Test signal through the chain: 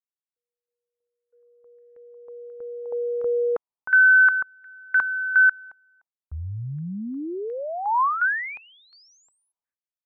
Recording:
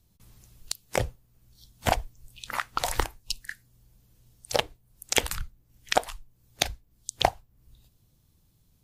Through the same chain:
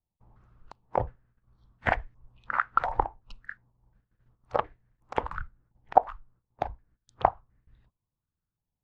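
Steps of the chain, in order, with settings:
noise gate −58 dBFS, range −19 dB
low-pass on a step sequencer 2.8 Hz 850–1,800 Hz
level −4 dB

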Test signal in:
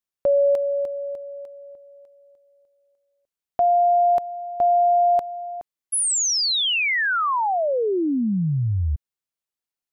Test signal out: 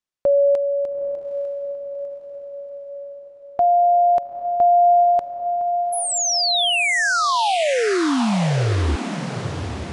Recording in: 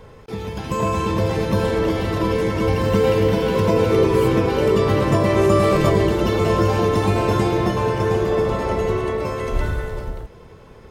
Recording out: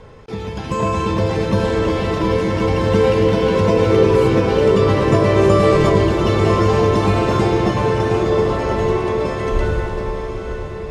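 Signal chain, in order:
low-pass filter 7,700 Hz 12 dB per octave
on a send: feedback delay with all-pass diffusion 863 ms, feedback 53%, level −8.5 dB
on the sum: level +2 dB

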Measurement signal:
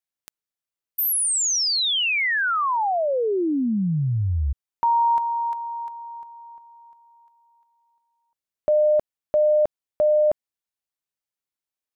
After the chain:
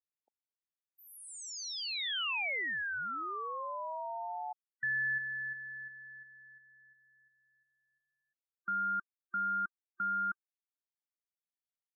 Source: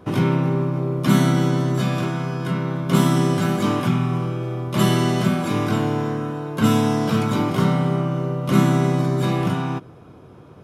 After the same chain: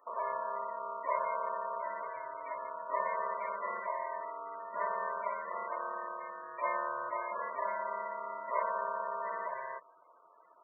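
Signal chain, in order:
low-pass filter 1,900 Hz 12 dB per octave
ring modulation 800 Hz
low-shelf EQ 90 Hz −4.5 dB
spectral peaks only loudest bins 32
first difference
level +4.5 dB

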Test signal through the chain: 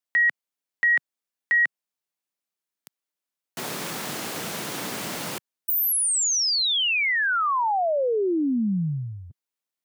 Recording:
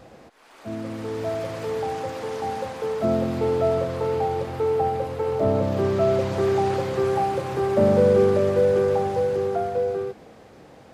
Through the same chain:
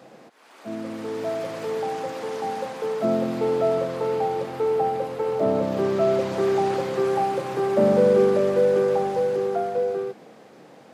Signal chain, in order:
high-pass filter 150 Hz 24 dB per octave

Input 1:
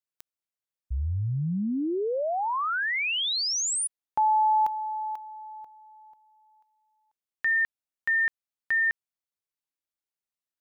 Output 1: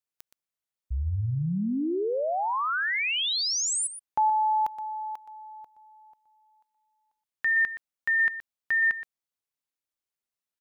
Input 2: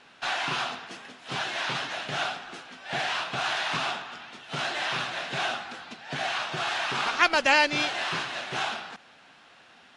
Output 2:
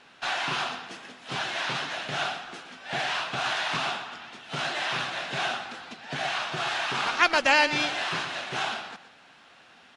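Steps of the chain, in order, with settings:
single-tap delay 121 ms −12.5 dB

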